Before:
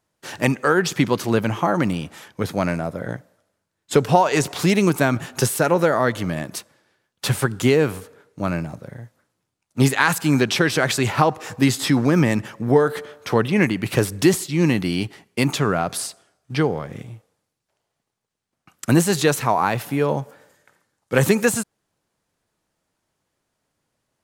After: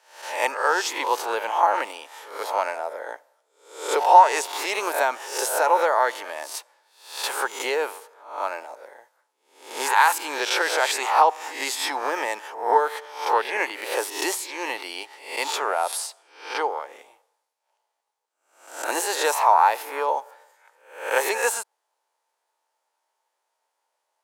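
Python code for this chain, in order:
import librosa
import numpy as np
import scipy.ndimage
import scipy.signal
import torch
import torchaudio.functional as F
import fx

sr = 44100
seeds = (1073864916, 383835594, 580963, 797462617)

y = fx.spec_swells(x, sr, rise_s=0.53)
y = scipy.signal.sosfilt(scipy.signal.cheby2(4, 50, 180.0, 'highpass', fs=sr, output='sos'), y)
y = fx.peak_eq(y, sr, hz=890.0, db=12.5, octaves=0.3)
y = y * 10.0 ** (-4.5 / 20.0)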